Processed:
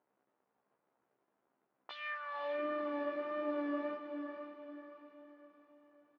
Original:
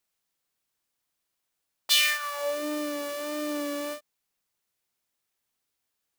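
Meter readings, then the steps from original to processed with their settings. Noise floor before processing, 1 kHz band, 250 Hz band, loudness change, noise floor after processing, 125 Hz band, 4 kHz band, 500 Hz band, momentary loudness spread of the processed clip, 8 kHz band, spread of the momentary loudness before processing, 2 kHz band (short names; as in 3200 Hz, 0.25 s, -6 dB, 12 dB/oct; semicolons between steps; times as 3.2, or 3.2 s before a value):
-82 dBFS, -5.0 dB, -6.0 dB, -12.5 dB, -84 dBFS, n/a, -27.0 dB, -5.5 dB, 18 LU, under -40 dB, 15 LU, -13.0 dB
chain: bell 570 Hz -13.5 dB 2.1 oct; compressor 6:1, threshold -26 dBFS, peak gain reduction 8 dB; crackle 310/s -62 dBFS; Butterworth band-pass 470 Hz, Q 0.52; air absorption 250 m; doubler 15 ms -3 dB; diffused feedback echo 0.512 s, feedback 44%, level -6.5 dB; gain +6 dB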